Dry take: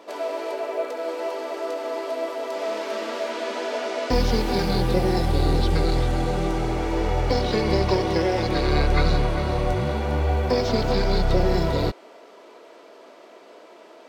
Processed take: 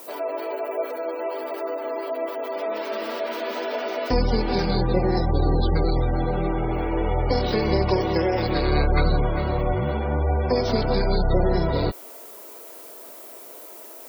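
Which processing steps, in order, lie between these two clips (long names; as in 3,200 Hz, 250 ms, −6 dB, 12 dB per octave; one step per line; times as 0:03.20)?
background noise violet −43 dBFS
gate on every frequency bin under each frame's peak −30 dB strong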